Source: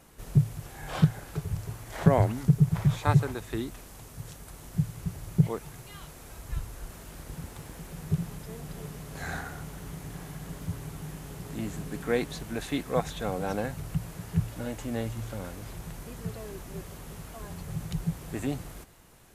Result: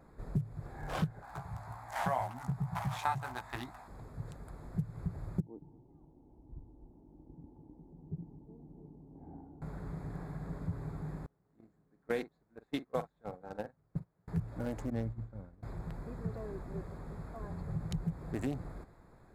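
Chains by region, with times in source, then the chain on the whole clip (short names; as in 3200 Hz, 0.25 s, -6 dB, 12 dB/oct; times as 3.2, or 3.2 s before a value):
1.22–3.88 HPF 49 Hz + resonant low shelf 590 Hz -10 dB, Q 3 + doubler 16 ms -2 dB
5.4–9.62 vocal tract filter u + echo 0.22 s -21 dB
11.26–14.28 gate -29 dBFS, range -30 dB + low shelf 120 Hz -9.5 dB + doubler 44 ms -13.5 dB
14.9–15.63 expander -27 dBFS + tone controls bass +7 dB, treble -3 dB
whole clip: Wiener smoothing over 15 samples; compressor 4:1, threshold -30 dBFS; gain -1 dB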